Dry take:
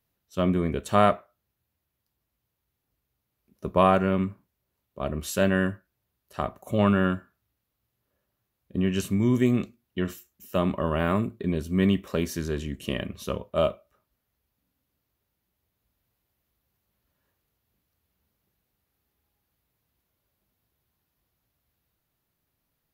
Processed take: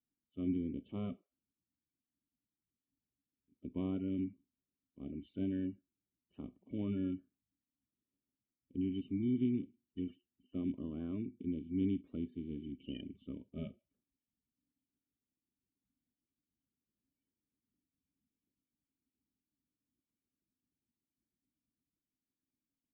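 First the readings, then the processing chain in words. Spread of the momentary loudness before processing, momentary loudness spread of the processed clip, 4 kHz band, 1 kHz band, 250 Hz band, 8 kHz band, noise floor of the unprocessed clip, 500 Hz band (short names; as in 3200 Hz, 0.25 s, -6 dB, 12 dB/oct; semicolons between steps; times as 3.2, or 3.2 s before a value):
13 LU, 13 LU, -21.0 dB, under -30 dB, -10.5 dB, under -35 dB, -81 dBFS, -21.0 dB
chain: bin magnitudes rounded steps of 30 dB; vocal tract filter i; gain -5 dB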